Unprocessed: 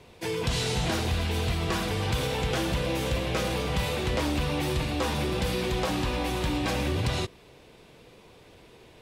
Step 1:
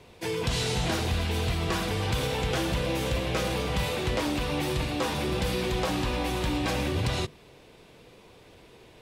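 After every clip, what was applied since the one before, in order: de-hum 74.33 Hz, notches 3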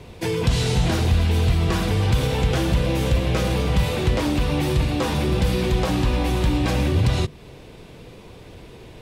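low shelf 250 Hz +9.5 dB; in parallel at +1 dB: compressor, threshold -31 dBFS, peak gain reduction 14.5 dB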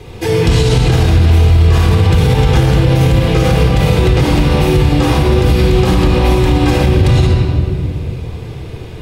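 shoebox room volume 3900 m³, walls mixed, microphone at 3.9 m; maximiser +6 dB; gain -1 dB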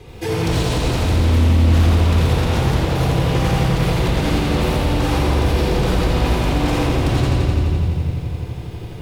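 wavefolder -8 dBFS; lo-fi delay 85 ms, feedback 80%, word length 8-bit, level -5.5 dB; gain -7 dB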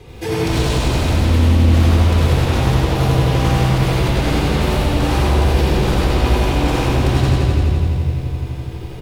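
echo 0.1 s -3.5 dB

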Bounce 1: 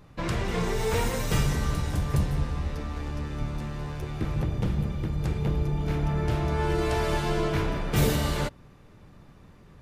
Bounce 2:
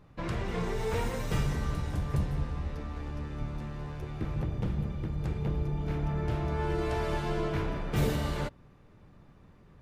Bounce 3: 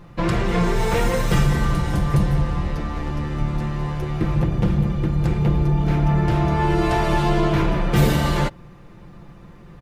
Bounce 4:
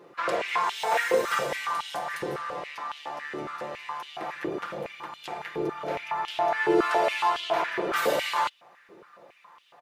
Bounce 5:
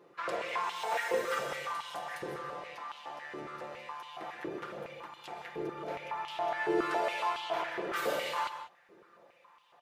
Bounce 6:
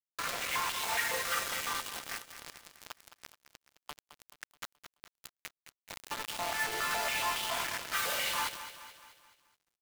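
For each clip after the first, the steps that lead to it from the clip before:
high shelf 3800 Hz -7.5 dB; gain -4.5 dB
comb 5.8 ms, depth 52%; in parallel at -2 dB: limiter -23.5 dBFS, peak gain reduction 7.5 dB; on the sum: gain +7 dB
stepped high-pass 7.2 Hz 410–3100 Hz; gain -5.5 dB
reverb, pre-delay 0.117 s, DRR 9 dB; gain -8 dB
passive tone stack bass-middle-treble 10-0-10; bit-crush 7-bit; lo-fi delay 0.214 s, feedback 55%, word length 11-bit, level -12 dB; gain +7.5 dB

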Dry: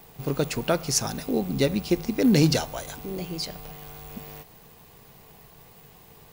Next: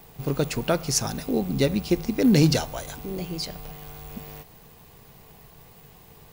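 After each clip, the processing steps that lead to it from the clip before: low shelf 130 Hz +4.5 dB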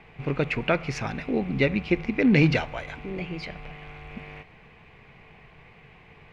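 synth low-pass 2300 Hz, resonance Q 4.4; gain -1.5 dB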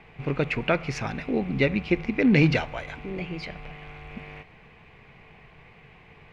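nothing audible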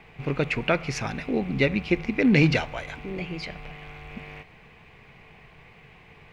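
high shelf 5800 Hz +9 dB

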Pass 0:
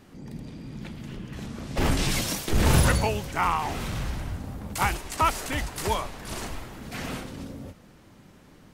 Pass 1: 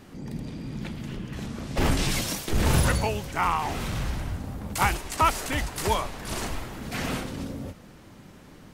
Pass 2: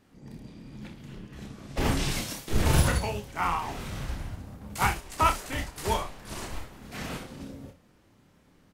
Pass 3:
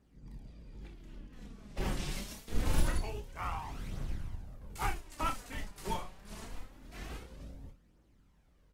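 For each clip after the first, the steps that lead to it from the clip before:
vocal rider within 4 dB 2 s
on a send: early reflections 29 ms -5.5 dB, 63 ms -11 dB; on the sum: upward expander 1.5:1, over -41 dBFS; gain -1 dB
octaver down 2 oct, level +4 dB; flange 0.25 Hz, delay 0.1 ms, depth 5.6 ms, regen +37%; gain -7 dB

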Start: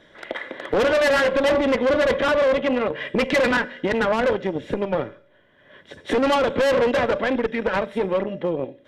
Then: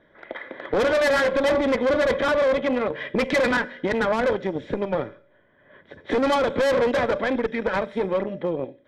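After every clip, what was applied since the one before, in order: notch 2800 Hz, Q 9.1; AGC gain up to 3.5 dB; low-pass opened by the level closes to 2000 Hz, open at -14 dBFS; gain -5 dB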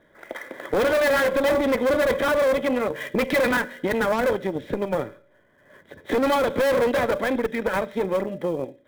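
switching dead time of 0.054 ms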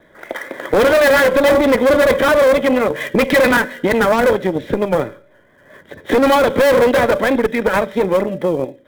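vibrato 4.4 Hz 46 cents; gain +8.5 dB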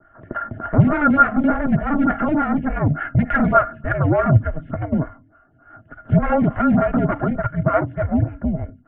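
small resonant body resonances 410/940/1700 Hz, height 16 dB, ringing for 70 ms; mistuned SSB -300 Hz 210–2600 Hz; photocell phaser 3.4 Hz; gain -5 dB

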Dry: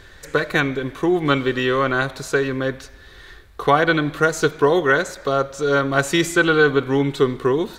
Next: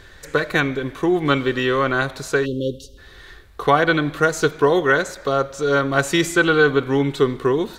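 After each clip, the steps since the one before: spectral delete 2.45–2.98, 590–2700 Hz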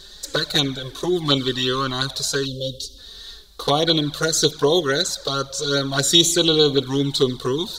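resonant high shelf 3000 Hz +10.5 dB, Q 3; envelope flanger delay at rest 5.8 ms, full sweep at -11.5 dBFS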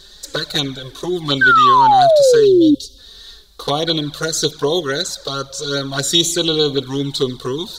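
painted sound fall, 1.41–2.75, 280–1600 Hz -10 dBFS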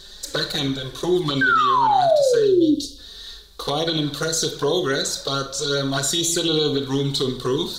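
limiter -12.5 dBFS, peak gain reduction 11 dB; reverb RT60 0.40 s, pre-delay 24 ms, DRR 7.5 dB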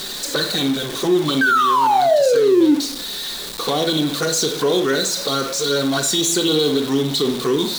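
zero-crossing step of -23.5 dBFS; resonant low shelf 130 Hz -13.5 dB, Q 1.5

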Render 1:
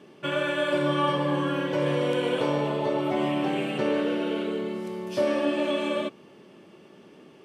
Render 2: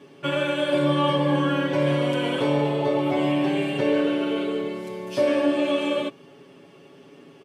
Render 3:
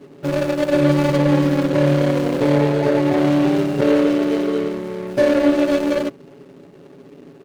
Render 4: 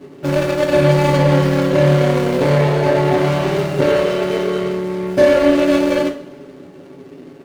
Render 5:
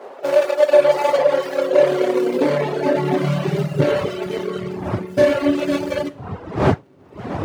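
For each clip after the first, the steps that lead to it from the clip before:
comb 7.2 ms, depth 91%
median filter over 41 samples; gain +7.5 dB
reverb, pre-delay 3 ms, DRR 2.5 dB; gain +2.5 dB
wind noise 640 Hz -27 dBFS; high-pass sweep 570 Hz -> 98 Hz, 1.51–4.21; reverb removal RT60 1.5 s; gain -2.5 dB

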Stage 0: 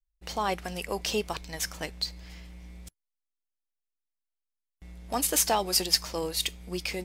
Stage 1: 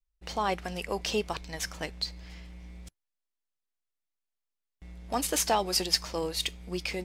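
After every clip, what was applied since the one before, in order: high shelf 9500 Hz -11 dB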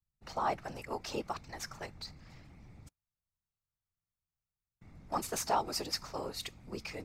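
thirty-one-band EQ 800 Hz +6 dB, 1250 Hz +8 dB, 3150 Hz -8 dB, 10000 Hz -5 dB; whisperiser; gain -8 dB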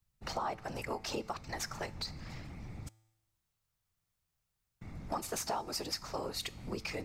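compressor 4:1, threshold -45 dBFS, peak gain reduction 16 dB; resonator 110 Hz, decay 1 s, harmonics all, mix 40%; gain +13 dB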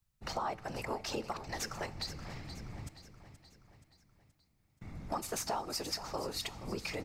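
feedback echo 0.476 s, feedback 52%, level -12.5 dB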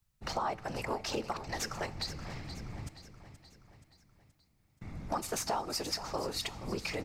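Doppler distortion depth 0.13 ms; gain +2.5 dB

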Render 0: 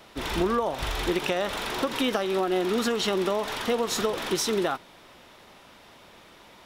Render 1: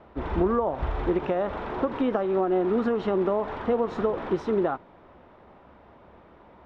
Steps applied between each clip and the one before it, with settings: LPF 1100 Hz 12 dB/oct; bell 69 Hz +11.5 dB 0.24 oct; gain +2 dB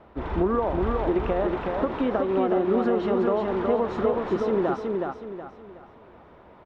feedback echo 0.37 s, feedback 35%, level -3.5 dB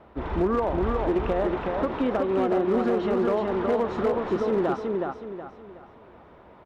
one-sided clip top -19 dBFS, bottom -16.5 dBFS

